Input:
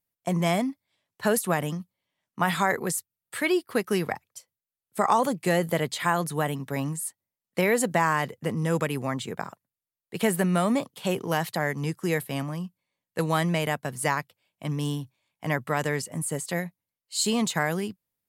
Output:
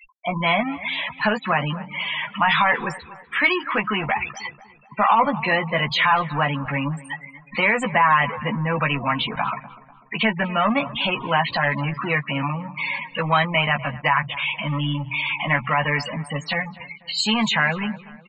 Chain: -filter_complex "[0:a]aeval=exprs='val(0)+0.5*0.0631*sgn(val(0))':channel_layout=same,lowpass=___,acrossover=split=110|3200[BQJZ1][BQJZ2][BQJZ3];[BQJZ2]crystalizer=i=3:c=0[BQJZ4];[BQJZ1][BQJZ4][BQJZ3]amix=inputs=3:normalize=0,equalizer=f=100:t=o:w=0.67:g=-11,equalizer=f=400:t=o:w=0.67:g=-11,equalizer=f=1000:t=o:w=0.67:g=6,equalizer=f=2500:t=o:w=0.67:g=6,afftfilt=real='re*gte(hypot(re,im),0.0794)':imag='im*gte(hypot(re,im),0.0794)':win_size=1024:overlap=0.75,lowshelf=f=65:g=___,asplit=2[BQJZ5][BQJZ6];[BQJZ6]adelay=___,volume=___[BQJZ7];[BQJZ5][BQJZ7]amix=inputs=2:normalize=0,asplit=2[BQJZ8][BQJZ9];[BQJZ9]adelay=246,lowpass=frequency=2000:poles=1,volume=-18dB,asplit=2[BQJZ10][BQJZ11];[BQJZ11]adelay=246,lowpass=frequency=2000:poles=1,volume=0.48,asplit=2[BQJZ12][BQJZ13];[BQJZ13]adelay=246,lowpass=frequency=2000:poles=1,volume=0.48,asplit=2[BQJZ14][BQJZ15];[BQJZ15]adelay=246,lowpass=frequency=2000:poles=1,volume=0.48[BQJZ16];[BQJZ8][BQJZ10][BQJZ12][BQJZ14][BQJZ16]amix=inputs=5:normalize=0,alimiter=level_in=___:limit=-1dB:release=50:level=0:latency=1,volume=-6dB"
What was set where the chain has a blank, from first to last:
5600, -5, 14, -5.5dB, 7dB